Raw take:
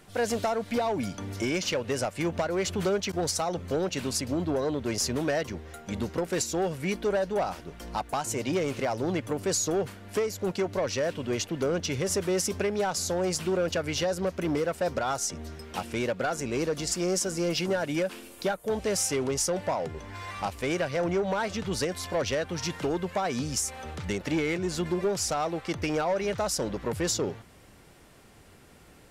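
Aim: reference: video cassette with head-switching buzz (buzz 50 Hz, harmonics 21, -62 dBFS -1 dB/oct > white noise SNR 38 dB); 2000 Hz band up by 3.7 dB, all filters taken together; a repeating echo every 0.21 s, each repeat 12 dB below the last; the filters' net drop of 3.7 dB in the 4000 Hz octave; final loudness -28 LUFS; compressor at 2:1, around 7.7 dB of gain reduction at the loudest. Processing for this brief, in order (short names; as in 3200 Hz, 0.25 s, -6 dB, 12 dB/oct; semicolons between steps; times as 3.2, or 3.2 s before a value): bell 2000 Hz +6.5 dB; bell 4000 Hz -7.5 dB; compressor 2:1, threshold -38 dBFS; feedback echo 0.21 s, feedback 25%, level -12 dB; buzz 50 Hz, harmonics 21, -62 dBFS -1 dB/oct; white noise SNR 38 dB; gain +8 dB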